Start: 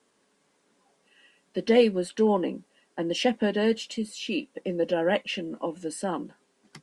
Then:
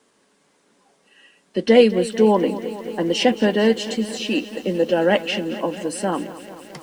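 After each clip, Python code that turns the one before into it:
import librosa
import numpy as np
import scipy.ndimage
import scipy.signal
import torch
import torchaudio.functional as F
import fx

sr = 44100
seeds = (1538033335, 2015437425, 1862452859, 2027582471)

y = fx.echo_crushed(x, sr, ms=221, feedback_pct=80, bits=8, wet_db=-15.0)
y = y * 10.0 ** (7.0 / 20.0)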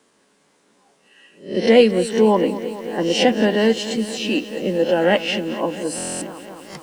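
y = fx.spec_swells(x, sr, rise_s=0.37)
y = fx.buffer_glitch(y, sr, at_s=(5.96,), block=1024, repeats=10)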